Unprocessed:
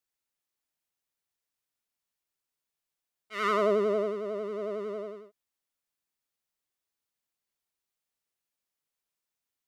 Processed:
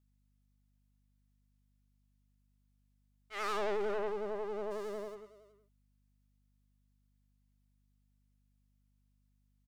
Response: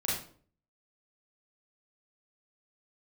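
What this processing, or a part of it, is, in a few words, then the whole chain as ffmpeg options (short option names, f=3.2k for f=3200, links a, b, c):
valve amplifier with mains hum: -filter_complex "[0:a]asplit=3[a][b][c];[a]afade=t=out:st=4.7:d=0.02[d];[b]bass=f=250:g=-14,treble=f=4k:g=15,afade=t=in:st=4.7:d=0.02,afade=t=out:st=5.14:d=0.02[e];[c]afade=t=in:st=5.14:d=0.02[f];[d][e][f]amix=inputs=3:normalize=0,aecho=1:1:375:0.126,aeval=exprs='(tanh(39.8*val(0)+0.7)-tanh(0.7))/39.8':c=same,aeval=exprs='val(0)+0.000251*(sin(2*PI*50*n/s)+sin(2*PI*2*50*n/s)/2+sin(2*PI*3*50*n/s)/3+sin(2*PI*4*50*n/s)/4+sin(2*PI*5*50*n/s)/5)':c=same"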